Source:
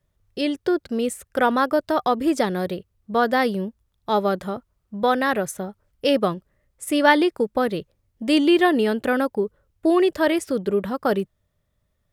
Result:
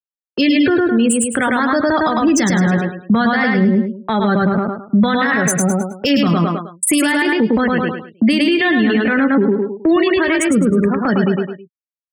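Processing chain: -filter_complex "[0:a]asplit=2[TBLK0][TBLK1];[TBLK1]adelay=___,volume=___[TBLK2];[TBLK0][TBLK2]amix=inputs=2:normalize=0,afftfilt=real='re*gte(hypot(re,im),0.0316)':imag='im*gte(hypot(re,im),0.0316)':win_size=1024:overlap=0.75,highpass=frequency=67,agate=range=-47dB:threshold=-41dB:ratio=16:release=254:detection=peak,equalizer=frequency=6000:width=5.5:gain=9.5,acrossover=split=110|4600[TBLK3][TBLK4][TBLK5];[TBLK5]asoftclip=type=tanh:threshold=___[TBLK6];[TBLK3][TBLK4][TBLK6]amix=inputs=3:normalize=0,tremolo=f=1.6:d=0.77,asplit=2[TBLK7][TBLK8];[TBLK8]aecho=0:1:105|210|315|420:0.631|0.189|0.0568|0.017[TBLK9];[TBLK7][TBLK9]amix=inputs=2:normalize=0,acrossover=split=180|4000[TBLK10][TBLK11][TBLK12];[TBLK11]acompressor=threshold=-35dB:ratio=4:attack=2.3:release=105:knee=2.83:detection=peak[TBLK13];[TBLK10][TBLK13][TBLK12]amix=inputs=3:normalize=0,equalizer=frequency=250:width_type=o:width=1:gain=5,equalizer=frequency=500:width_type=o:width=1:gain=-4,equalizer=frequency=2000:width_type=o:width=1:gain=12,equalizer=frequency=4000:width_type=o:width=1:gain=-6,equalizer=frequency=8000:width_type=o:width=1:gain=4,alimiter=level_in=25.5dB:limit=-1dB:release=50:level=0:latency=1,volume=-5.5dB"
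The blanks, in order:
18, -10dB, -28.5dB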